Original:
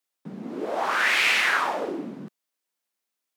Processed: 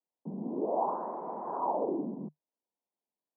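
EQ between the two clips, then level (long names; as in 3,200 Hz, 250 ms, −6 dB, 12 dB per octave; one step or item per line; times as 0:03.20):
Chebyshev band-pass filter 150–1,000 Hz, order 5
high-frequency loss of the air 430 metres
0.0 dB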